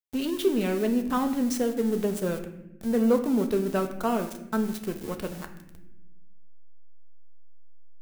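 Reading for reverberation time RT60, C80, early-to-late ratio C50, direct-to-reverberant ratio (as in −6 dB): non-exponential decay, 12.5 dB, 10.0 dB, 5.0 dB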